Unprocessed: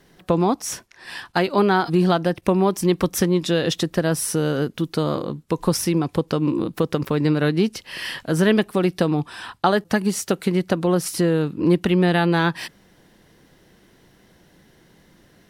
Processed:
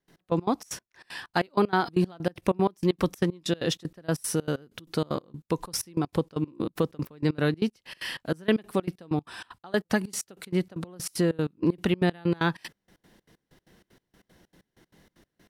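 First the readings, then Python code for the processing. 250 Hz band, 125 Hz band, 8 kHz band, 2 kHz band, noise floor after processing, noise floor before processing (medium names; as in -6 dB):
-7.5 dB, -8.0 dB, -7.5 dB, -7.0 dB, -83 dBFS, -56 dBFS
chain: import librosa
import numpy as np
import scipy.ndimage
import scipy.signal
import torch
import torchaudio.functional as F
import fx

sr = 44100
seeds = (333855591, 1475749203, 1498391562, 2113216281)

y = fx.step_gate(x, sr, bpm=191, pattern='.x..x.xx', floor_db=-24.0, edge_ms=4.5)
y = y * 10.0 ** (-4.5 / 20.0)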